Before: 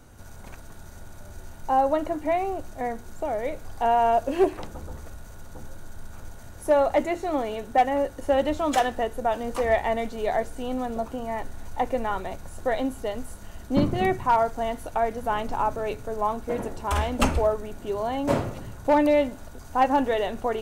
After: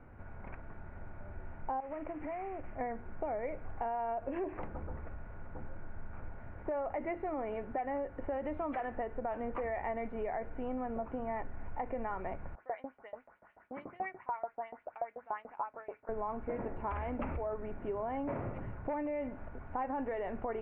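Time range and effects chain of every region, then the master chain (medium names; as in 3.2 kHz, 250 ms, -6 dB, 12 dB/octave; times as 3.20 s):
1.80–2.76 s: CVSD coder 16 kbps + compression 8:1, threshold -33 dBFS
12.55–16.09 s: LFO band-pass saw up 6.9 Hz 570–7600 Hz + treble shelf 3.4 kHz -10 dB
whole clip: peak limiter -19.5 dBFS; compression, threshold -30 dBFS; elliptic low-pass 2.3 kHz, stop band 60 dB; trim -3 dB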